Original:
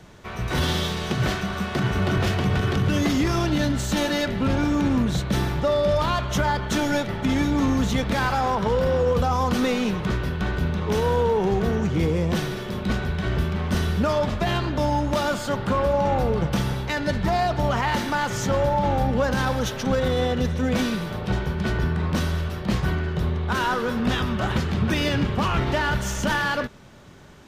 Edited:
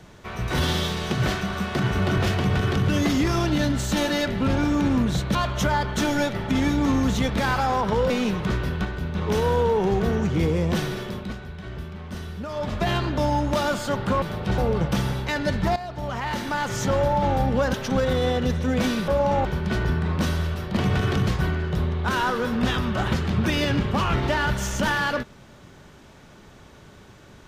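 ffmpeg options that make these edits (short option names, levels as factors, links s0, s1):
-filter_complex "[0:a]asplit=15[s0][s1][s2][s3][s4][s5][s6][s7][s8][s9][s10][s11][s12][s13][s14];[s0]atrim=end=5.352[s15];[s1]atrim=start=6.088:end=8.842[s16];[s2]atrim=start=9.698:end=10.452[s17];[s3]atrim=start=10.448:end=10.752,asetpts=PTS-STARTPTS,volume=0.562[s18];[s4]atrim=start=10.748:end=12.95,asetpts=PTS-STARTPTS,afade=t=out:st=1.872:d=0.33:silence=0.281838[s19];[s5]atrim=start=12.95:end=14.1,asetpts=PTS-STARTPTS,volume=0.282[s20];[s6]atrim=start=14.1:end=15.822,asetpts=PTS-STARTPTS,afade=t=in:d=0.33:silence=0.281838[s21];[s7]atrim=start=21.028:end=21.392[s22];[s8]atrim=start=16.188:end=17.37,asetpts=PTS-STARTPTS,afade=t=out:st=1.178:d=0.004:c=hsin:silence=0.199526[s23];[s9]atrim=start=17.37:end=19.352,asetpts=PTS-STARTPTS,afade=t=in:d=1.09:silence=0.199526[s24];[s10]atrim=start=19.688:end=21.032[s25];[s11]atrim=start=15.818:end=16.192[s26];[s12]atrim=start=21.388:end=22.712[s27];[s13]atrim=start=2.368:end=2.872[s28];[s14]atrim=start=22.708[s29];[s15][s16]acrossfade=d=0.004:c1=hsin:c2=hsin[s30];[s30][s17]acrossfade=d=0.004:c1=hsin:c2=hsin[s31];[s31][s18]acrossfade=d=0.004:c1=hsin:c2=hsin[s32];[s19][s20][s21]concat=n=3:v=0:a=1[s33];[s32][s33]acrossfade=d=0.004:c1=hsin:c2=hsin[s34];[s34][s22]acrossfade=d=0.004:c1=hsin:c2=hsin[s35];[s23][s24]concat=n=2:v=0:a=1[s36];[s35][s36]acrossfade=d=0.004:c1=hsin:c2=hsin[s37];[s37][s25]acrossfade=d=0.004:c1=hsin:c2=hsin[s38];[s38][s26]acrossfade=d=0.004:c1=hsin:c2=hsin[s39];[s39][s27]acrossfade=d=0.004:c1=hsin:c2=hsin[s40];[s40][s28]acrossfade=d=0.004:c1=hsin:c2=hsin[s41];[s41][s29]acrossfade=d=0.004:c1=hsin:c2=hsin"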